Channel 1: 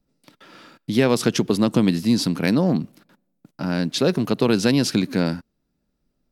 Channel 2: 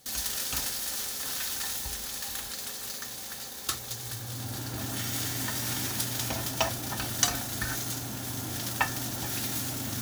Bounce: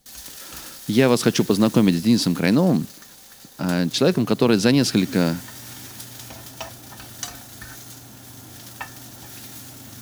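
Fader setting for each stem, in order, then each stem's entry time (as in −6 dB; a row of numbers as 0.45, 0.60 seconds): +1.5, −6.5 decibels; 0.00, 0.00 seconds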